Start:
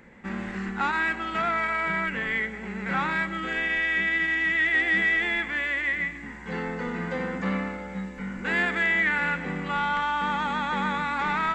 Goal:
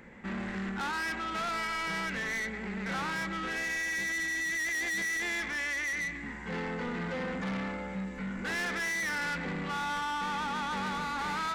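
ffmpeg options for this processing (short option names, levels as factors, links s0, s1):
-af "asoftclip=type=tanh:threshold=0.0282"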